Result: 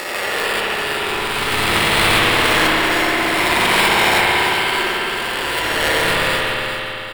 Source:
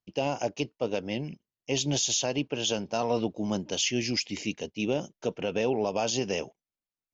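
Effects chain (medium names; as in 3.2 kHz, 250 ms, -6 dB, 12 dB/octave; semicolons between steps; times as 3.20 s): reverse spectral sustain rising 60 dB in 2.86 s; elliptic band-stop 210–790 Hz, stop band 40 dB; peaking EQ 100 Hz -9.5 dB 2.4 oct; in parallel at +2 dB: peak limiter -19 dBFS, peak gain reduction 11 dB; on the sum: sample-rate reducer 4.1 kHz, jitter 0%; ring modulator 450 Hz; pitch shift +7 st; doubling 29 ms -11 dB; on a send: feedback delay 390 ms, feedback 35%, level -8 dB; on the sum: spring tank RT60 3.1 s, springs 57 ms, chirp 55 ms, DRR -4.5 dB; trim +3.5 dB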